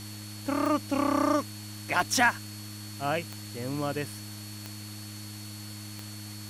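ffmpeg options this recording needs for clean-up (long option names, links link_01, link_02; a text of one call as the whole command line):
ffmpeg -i in.wav -af "adeclick=threshold=4,bandreject=frequency=104.3:width_type=h:width=4,bandreject=frequency=208.6:width_type=h:width=4,bandreject=frequency=312.9:width_type=h:width=4,bandreject=frequency=4400:width=30,afftdn=noise_reduction=30:noise_floor=-41" out.wav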